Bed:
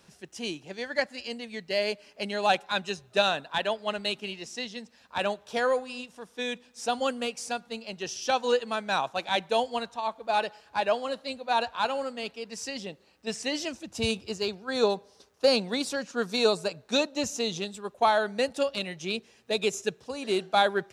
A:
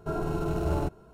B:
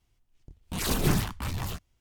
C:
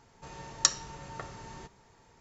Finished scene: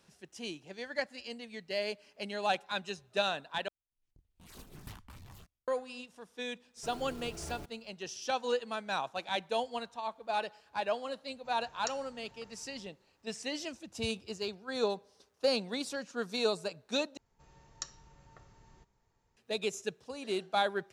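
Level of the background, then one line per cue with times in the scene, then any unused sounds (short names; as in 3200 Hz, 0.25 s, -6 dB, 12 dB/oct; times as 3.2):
bed -7 dB
3.68 replace with B -15.5 dB + random-step tremolo 4.2 Hz, depth 85%
6.77 add A -17.5 dB + block floating point 3-bit
11.22 add C -16.5 dB
17.17 replace with C -17.5 dB + low shelf 90 Hz +11.5 dB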